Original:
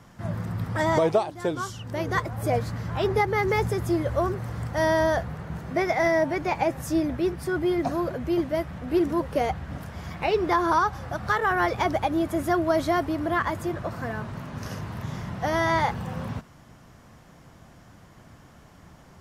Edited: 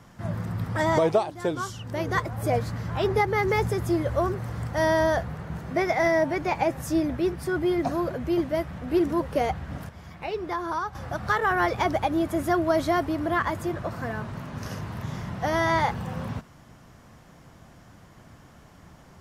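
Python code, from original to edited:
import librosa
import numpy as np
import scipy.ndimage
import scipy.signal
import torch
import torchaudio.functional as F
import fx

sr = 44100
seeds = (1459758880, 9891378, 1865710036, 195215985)

y = fx.edit(x, sr, fx.clip_gain(start_s=9.89, length_s=1.06, db=-7.5), tone=tone)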